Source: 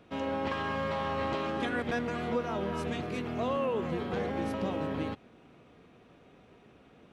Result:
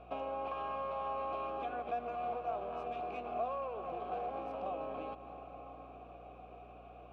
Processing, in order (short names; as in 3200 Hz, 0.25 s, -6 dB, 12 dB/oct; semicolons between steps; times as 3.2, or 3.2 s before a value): 2.15–4.66 tube stage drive 30 dB, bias 0.75; tone controls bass -8 dB, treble -1 dB; reverb RT60 5.0 s, pre-delay 58 ms, DRR 16.5 dB; compressor, threshold -42 dBFS, peak gain reduction 12.5 dB; vowel filter a; low shelf 420 Hz +10.5 dB; hum 60 Hz, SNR 19 dB; gain +12.5 dB